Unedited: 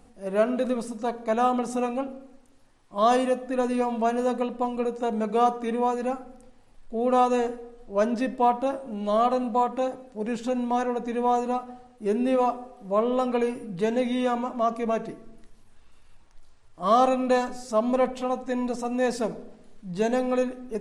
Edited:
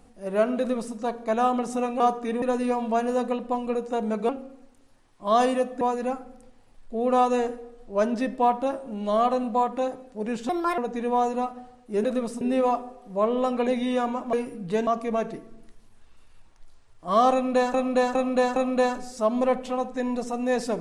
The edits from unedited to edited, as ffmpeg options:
-filter_complex "[0:a]asplit=15[a][b][c][d][e][f][g][h][i][j][k][l][m][n][o];[a]atrim=end=2.002[p];[b]atrim=start=5.388:end=5.812[q];[c]atrim=start=3.518:end=5.392[r];[d]atrim=start=1.998:end=3.522[s];[e]atrim=start=5.808:end=10.494[t];[f]atrim=start=10.49:end=10.9,asetpts=PTS-STARTPTS,asetrate=62181,aresample=44100,atrim=end_sample=12823,asetpts=PTS-STARTPTS[u];[g]atrim=start=10.896:end=12.162[v];[h]atrim=start=0.578:end=0.952[w];[i]atrim=start=12.158:end=13.422[x];[j]atrim=start=13.958:end=14.622[y];[k]atrim=start=13.418:end=13.962[z];[l]atrim=start=14.618:end=17.492[aa];[m]atrim=start=17.078:end=17.492[ab];[n]atrim=start=17.078:end=17.492[ac];[o]atrim=start=17.078[ad];[p][q]acrossfade=d=0.004:c1=hsin:c2=hsin[ae];[ae][r]acrossfade=d=0.004:c1=hsin:c2=hsin[af];[af][s]acrossfade=d=0.004:c1=hsin:c2=hsin[ag];[ag][t]acrossfade=d=0.004:c1=hsin:c2=hsin[ah];[ah][u]acrossfade=d=0.004:c1=hsin:c2=hsin[ai];[ai][v]acrossfade=d=0.004:c1=hsin:c2=hsin[aj];[aj][w]acrossfade=d=0.004:c1=hsin:c2=hsin[ak];[ak][x]acrossfade=d=0.004:c1=hsin:c2=hsin[al];[al][y]acrossfade=d=0.004:c1=hsin:c2=hsin[am];[am][z]acrossfade=d=0.004:c1=hsin:c2=hsin[an];[an][aa]acrossfade=d=0.004:c1=hsin:c2=hsin[ao];[ao][ab]acrossfade=d=0.004:c1=hsin:c2=hsin[ap];[ap][ac]acrossfade=d=0.004:c1=hsin:c2=hsin[aq];[aq][ad]acrossfade=d=0.004:c1=hsin:c2=hsin"

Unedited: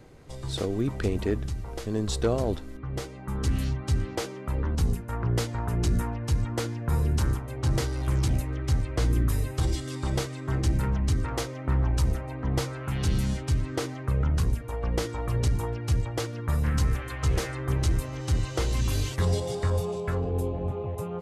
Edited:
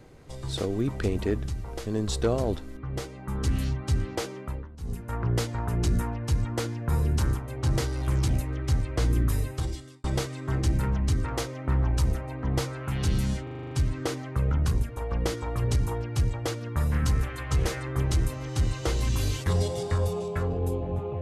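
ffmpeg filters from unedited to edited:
-filter_complex "[0:a]asplit=11[a][b][c][d][e][f][g][h][i][j][k];[a]atrim=end=4.68,asetpts=PTS-STARTPTS,afade=t=out:st=4.39:d=0.29:silence=0.125893[l];[b]atrim=start=4.68:end=4.79,asetpts=PTS-STARTPTS,volume=-18dB[m];[c]atrim=start=4.79:end=10.04,asetpts=PTS-STARTPTS,afade=t=in:d=0.29:silence=0.125893,afade=t=out:st=4.6:d=0.65[n];[d]atrim=start=10.04:end=13.472,asetpts=PTS-STARTPTS,afade=t=in:d=0.004:c=hsin[o];[e]atrim=start=13.428:end=13.472[p];[f]atrim=start=13.428:end=13.472[q];[g]atrim=start=13.428:end=13.472[r];[h]atrim=start=13.428:end=13.472[s];[i]atrim=start=13.428:end=13.472[t];[j]atrim=start=13.428:end=13.472[u];[k]atrim=start=13.428[v];[l][m][n][o]concat=n=4:v=0:a=1[w];[w][p]acrossfade=d=0.004:c1=hsin:c2=hsin[x];[x][q]acrossfade=d=0.004:c1=hsin:c2=hsin[y];[y][r]acrossfade=d=0.004:c1=hsin:c2=hsin[z];[z][s]acrossfade=d=0.004:c1=hsin:c2=hsin[aa];[aa][t]acrossfade=d=0.004:c1=hsin:c2=hsin[ab];[ab][u]acrossfade=d=0.004:c1=hsin:c2=hsin[ac];[ac][v]acrossfade=d=0.004:c1=hsin:c2=hsin"

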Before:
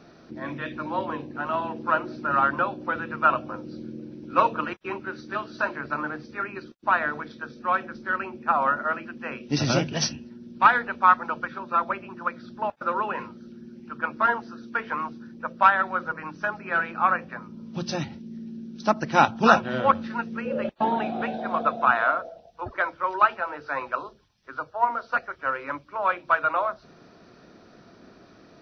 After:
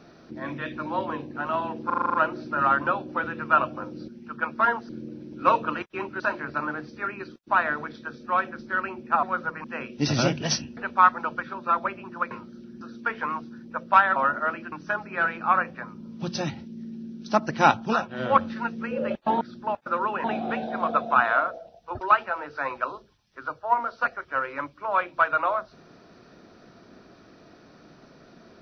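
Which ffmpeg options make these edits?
-filter_complex "[0:a]asplit=23[a][b][c][d][e][f][g][h][i][j][k][l][m][n][o][p][q][r][s][t][u][v][w];[a]atrim=end=1.902[x];[b]atrim=start=1.858:end=1.902[y];[c]atrim=start=1.858:end=1.902[z];[d]atrim=start=1.858:end=1.902[aa];[e]atrim=start=1.858:end=1.902[ab];[f]atrim=start=1.858:end=1.902[ac];[g]atrim=start=1.858:end=1.902[ad];[h]atrim=start=1.858:end=3.802[ae];[i]atrim=start=13.688:end=14.502[af];[j]atrim=start=3.798:end=5.112[ag];[k]atrim=start=5.558:end=8.592[ah];[l]atrim=start=15.848:end=16.262[ai];[m]atrim=start=9.148:end=10.282[aj];[n]atrim=start=10.818:end=12.362[ak];[o]atrim=start=13.188:end=13.692[al];[p]atrim=start=14.498:end=15.852[am];[q]atrim=start=8.588:end=9.152[an];[r]atrim=start=16.258:end=19.52,asetpts=PTS-STARTPTS,afade=t=out:st=2.952:d=0.31:c=qsin:silence=0.316228[ao];[s]atrim=start=19.52:end=19.62,asetpts=PTS-STARTPTS,volume=-10dB[ap];[t]atrim=start=19.62:end=20.952,asetpts=PTS-STARTPTS,afade=t=in:d=0.31:c=qsin:silence=0.316228[aq];[u]atrim=start=12.358:end=13.192[ar];[v]atrim=start=20.948:end=22.722[as];[w]atrim=start=23.118[at];[x][y]acrossfade=d=0.004:c1=hsin:c2=hsin[au];[au][z]acrossfade=d=0.004:c1=hsin:c2=hsin[av];[av][aa]acrossfade=d=0.004:c1=hsin:c2=hsin[aw];[aw][ab]acrossfade=d=0.004:c1=hsin:c2=hsin[ax];[ax][ac]acrossfade=d=0.004:c1=hsin:c2=hsin[ay];[ay][ad]acrossfade=d=0.004:c1=hsin:c2=hsin[az];[az][ae]acrossfade=d=0.004:c1=hsin:c2=hsin[ba];[ba][af]acrossfade=d=0.004:c1=hsin:c2=hsin[bb];[bb][ag]acrossfade=d=0.004:c1=hsin:c2=hsin[bc];[bc][ah]acrossfade=d=0.004:c1=hsin:c2=hsin[bd];[bd][ai]acrossfade=d=0.004:c1=hsin:c2=hsin[be];[be][aj]acrossfade=d=0.004:c1=hsin:c2=hsin[bf];[bf][ak]acrossfade=d=0.004:c1=hsin:c2=hsin[bg];[bg][al]acrossfade=d=0.004:c1=hsin:c2=hsin[bh];[bh][am]acrossfade=d=0.004:c1=hsin:c2=hsin[bi];[bi][an]acrossfade=d=0.004:c1=hsin:c2=hsin[bj];[ao][ap][aq]concat=n=3:v=0:a=1[bk];[bj][bk]acrossfade=d=0.004:c1=hsin:c2=hsin[bl];[bl][ar]acrossfade=d=0.004:c1=hsin:c2=hsin[bm];[bm][as]acrossfade=d=0.004:c1=hsin:c2=hsin[bn];[bn][at]acrossfade=d=0.004:c1=hsin:c2=hsin"

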